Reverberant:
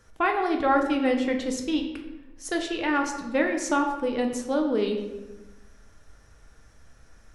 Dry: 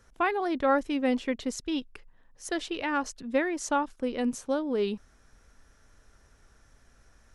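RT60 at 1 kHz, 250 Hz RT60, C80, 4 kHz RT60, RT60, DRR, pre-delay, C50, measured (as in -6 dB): 1.0 s, 1.5 s, 9.0 dB, 0.70 s, 1.1 s, 2.5 dB, 6 ms, 6.5 dB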